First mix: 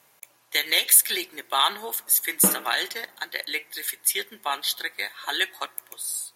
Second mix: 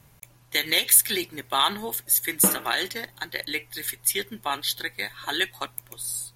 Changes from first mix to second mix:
speech: remove high-pass 460 Hz 12 dB/octave; reverb: off

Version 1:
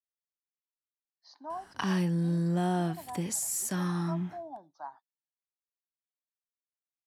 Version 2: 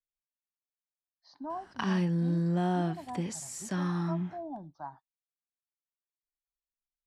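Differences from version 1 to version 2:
speech: remove high-pass 490 Hz 12 dB/octave; master: add distance through air 84 m

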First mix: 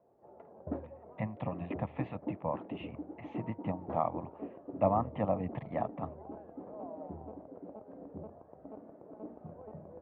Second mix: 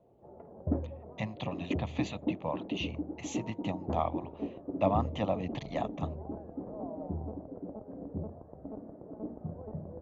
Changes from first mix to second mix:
speech: remove low-pass 1.9 kHz 24 dB/octave; background: add tilt EQ -3.5 dB/octave

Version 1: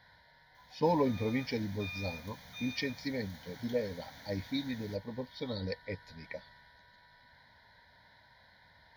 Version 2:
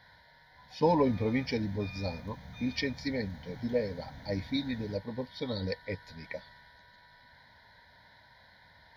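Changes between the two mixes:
speech +3.0 dB; background: add tilt EQ -3.5 dB/octave

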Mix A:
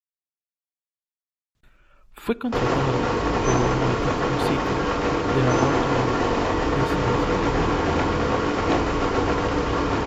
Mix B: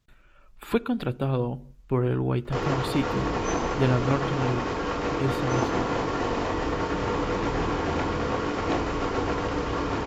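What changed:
speech: entry -1.55 s; background -5.0 dB

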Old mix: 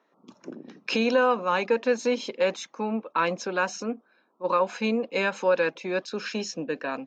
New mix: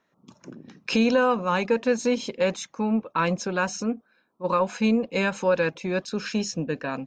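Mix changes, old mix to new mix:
background -6.0 dB; master: remove three-band isolator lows -22 dB, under 230 Hz, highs -18 dB, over 6.9 kHz

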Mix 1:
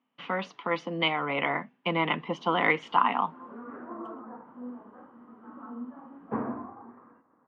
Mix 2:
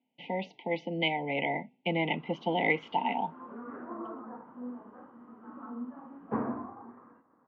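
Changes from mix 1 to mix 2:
speech: add Chebyshev band-stop 920–2000 Hz, order 5; master: add distance through air 160 m

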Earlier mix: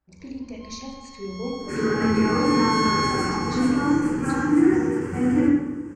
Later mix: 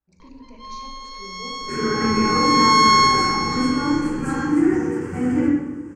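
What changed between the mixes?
speech -9.0 dB; first sound +10.0 dB

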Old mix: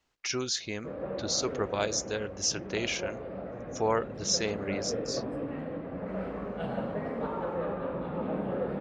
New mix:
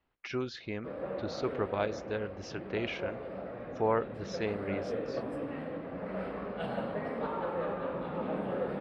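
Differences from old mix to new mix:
speech: add distance through air 390 m; background: add tilt EQ +1.5 dB/octave

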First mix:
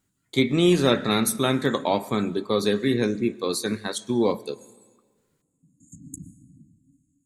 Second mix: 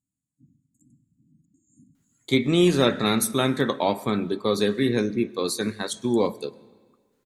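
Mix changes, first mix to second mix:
speech: entry +1.95 s; background -11.0 dB

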